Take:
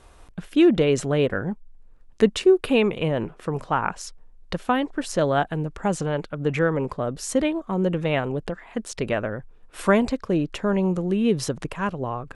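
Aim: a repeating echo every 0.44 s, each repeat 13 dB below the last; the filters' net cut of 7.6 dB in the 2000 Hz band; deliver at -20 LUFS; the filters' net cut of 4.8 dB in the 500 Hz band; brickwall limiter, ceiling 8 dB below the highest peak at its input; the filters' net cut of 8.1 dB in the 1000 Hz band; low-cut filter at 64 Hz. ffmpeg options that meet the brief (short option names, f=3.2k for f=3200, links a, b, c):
-af "highpass=64,equalizer=f=500:t=o:g=-4.5,equalizer=f=1k:t=o:g=-7.5,equalizer=f=2k:t=o:g=-7.5,alimiter=limit=-16.5dB:level=0:latency=1,aecho=1:1:440|880|1320:0.224|0.0493|0.0108,volume=8.5dB"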